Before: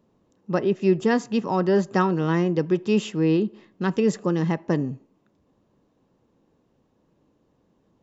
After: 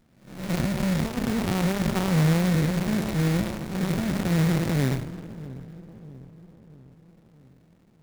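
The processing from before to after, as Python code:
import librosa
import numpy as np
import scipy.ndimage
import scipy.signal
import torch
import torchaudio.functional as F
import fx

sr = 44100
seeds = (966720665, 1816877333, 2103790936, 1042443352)

p1 = fx.spec_blur(x, sr, span_ms=304.0)
p2 = fx.cheby_harmonics(p1, sr, harmonics=(8,), levels_db=(-22,), full_scale_db=-14.0)
p3 = fx.over_compress(p2, sr, threshold_db=-30.0, ratio=-1.0)
p4 = p2 + (p3 * librosa.db_to_amplitude(2.0))
p5 = fx.dynamic_eq(p4, sr, hz=140.0, q=2.1, threshold_db=-38.0, ratio=4.0, max_db=7)
p6 = fx.sample_hold(p5, sr, seeds[0], rate_hz=2000.0, jitter_pct=20)
p7 = p6 + fx.echo_split(p6, sr, split_hz=320.0, low_ms=648, high_ms=261, feedback_pct=52, wet_db=-15, dry=0)
p8 = fx.running_max(p7, sr, window=65)
y = p8 * librosa.db_to_amplitude(-3.0)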